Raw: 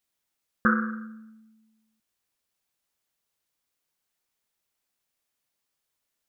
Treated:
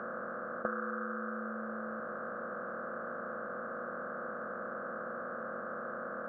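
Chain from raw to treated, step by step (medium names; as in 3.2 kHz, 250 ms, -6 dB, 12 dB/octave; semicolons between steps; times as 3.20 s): spectral levelling over time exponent 0.2; compression 5:1, threshold -26 dBFS, peak gain reduction 10 dB; band-pass filter 630 Hz, Q 4.3; trim +9 dB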